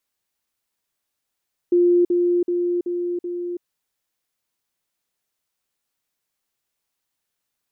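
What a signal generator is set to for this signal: level ladder 351 Hz -12.5 dBFS, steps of -3 dB, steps 5, 0.33 s 0.05 s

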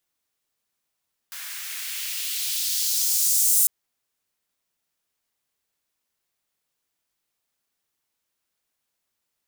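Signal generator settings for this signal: swept filtered noise white, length 2.35 s highpass, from 1.4 kHz, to 8.7 kHz, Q 1.5, exponential, gain ramp +19 dB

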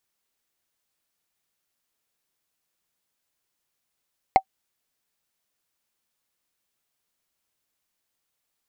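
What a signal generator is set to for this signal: wood hit, lowest mode 767 Hz, decay 0.07 s, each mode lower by 10 dB, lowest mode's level -5 dB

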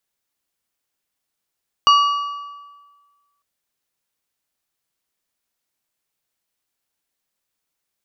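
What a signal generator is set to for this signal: metal hit plate, lowest mode 1.15 kHz, modes 4, decay 1.47 s, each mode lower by 7 dB, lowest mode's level -8 dB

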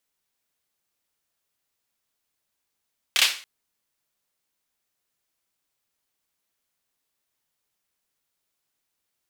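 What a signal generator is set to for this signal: hand clap length 0.28 s, bursts 3, apart 28 ms, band 2.9 kHz, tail 0.39 s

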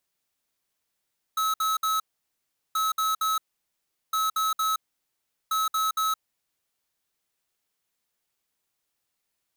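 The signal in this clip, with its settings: beep pattern square 1.29 kHz, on 0.17 s, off 0.06 s, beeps 3, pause 0.75 s, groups 4, -25 dBFS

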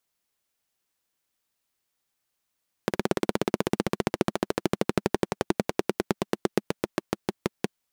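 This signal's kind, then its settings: single-cylinder engine model, changing speed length 4.83 s, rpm 2100, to 600, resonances 210/350 Hz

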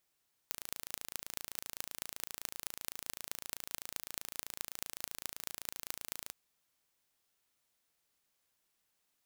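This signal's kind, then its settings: pulse train 27.8 per s, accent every 6, -9 dBFS 5.81 s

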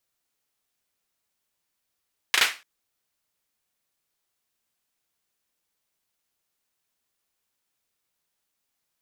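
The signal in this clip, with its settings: hand clap length 0.29 s, bursts 3, apart 36 ms, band 2.1 kHz, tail 0.29 s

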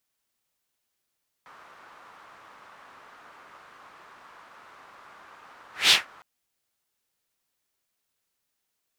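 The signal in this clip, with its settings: whoosh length 4.76 s, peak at 4.45 s, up 0.20 s, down 0.17 s, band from 1.2 kHz, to 3.5 kHz, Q 2.1, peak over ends 34.5 dB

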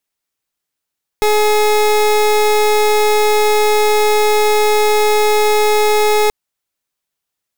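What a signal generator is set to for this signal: pulse 423 Hz, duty 28% -12 dBFS 5.08 s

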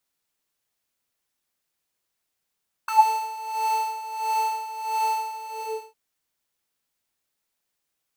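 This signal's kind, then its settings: synth patch with tremolo A5, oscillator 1 square, oscillator 2 saw, interval -12 st, detune 24 cents, oscillator 2 level -9.5 dB, noise -13.5 dB, filter highpass, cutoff 370 Hz, Q 10, filter envelope 2 oct, filter decay 0.17 s, filter sustain 40%, attack 5.4 ms, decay 0.08 s, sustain -5 dB, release 0.59 s, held 2.47 s, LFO 1.5 Hz, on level 12 dB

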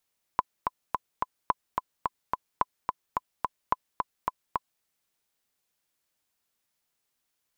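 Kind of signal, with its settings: metronome 216 bpm, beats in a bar 4, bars 4, 1.01 kHz, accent 4 dB -9 dBFS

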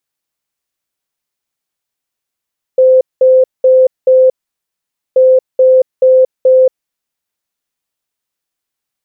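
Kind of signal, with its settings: beep pattern sine 517 Hz, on 0.23 s, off 0.20 s, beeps 4, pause 0.86 s, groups 2, -3.5 dBFS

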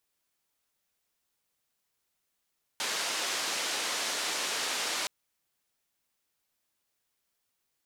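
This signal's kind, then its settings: noise band 350–6300 Hz, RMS -32.5 dBFS 2.27 s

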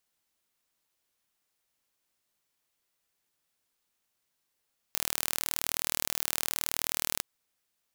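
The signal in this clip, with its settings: pulse train 39.1 per s, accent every 0, -2.5 dBFS 2.26 s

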